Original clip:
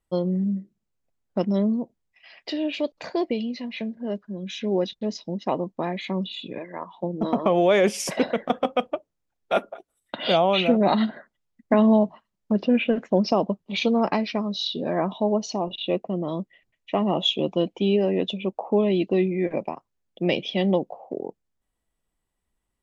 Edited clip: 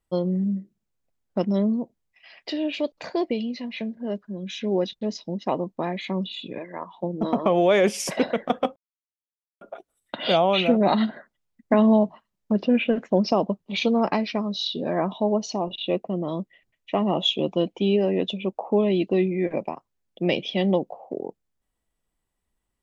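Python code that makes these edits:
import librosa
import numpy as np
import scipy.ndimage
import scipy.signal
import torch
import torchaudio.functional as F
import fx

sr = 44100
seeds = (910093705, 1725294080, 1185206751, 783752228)

y = fx.edit(x, sr, fx.silence(start_s=8.76, length_s=0.85), tone=tone)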